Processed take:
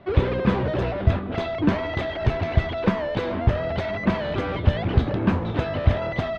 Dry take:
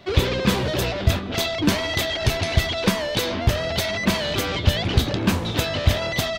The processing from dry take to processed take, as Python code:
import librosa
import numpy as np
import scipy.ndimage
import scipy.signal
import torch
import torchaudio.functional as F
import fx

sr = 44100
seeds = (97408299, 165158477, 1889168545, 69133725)

y = scipy.signal.sosfilt(scipy.signal.butter(2, 1600.0, 'lowpass', fs=sr, output='sos'), x)